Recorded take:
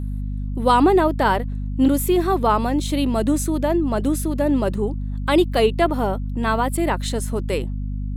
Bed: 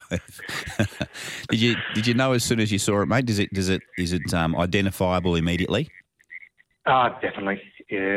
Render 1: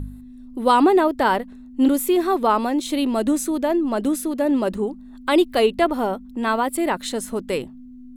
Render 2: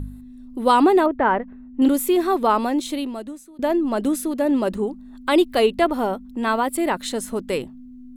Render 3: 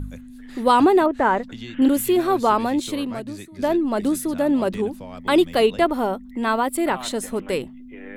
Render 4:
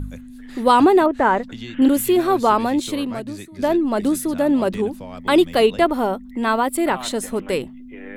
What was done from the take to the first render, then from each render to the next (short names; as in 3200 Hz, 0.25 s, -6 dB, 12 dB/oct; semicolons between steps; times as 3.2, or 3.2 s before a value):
de-hum 50 Hz, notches 4
1.06–1.82 LPF 2300 Hz 24 dB/oct; 2.8–3.59 fade out quadratic, to -24 dB
add bed -16.5 dB
gain +2 dB